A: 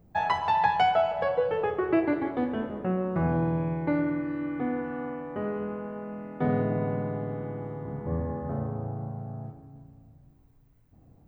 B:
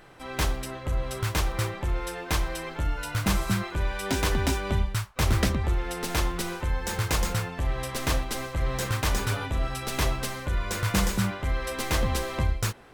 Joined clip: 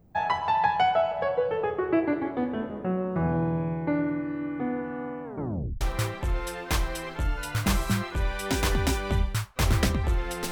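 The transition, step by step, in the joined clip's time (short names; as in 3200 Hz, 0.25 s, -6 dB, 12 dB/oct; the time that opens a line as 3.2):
A
5.24 tape stop 0.57 s
5.81 switch to B from 1.41 s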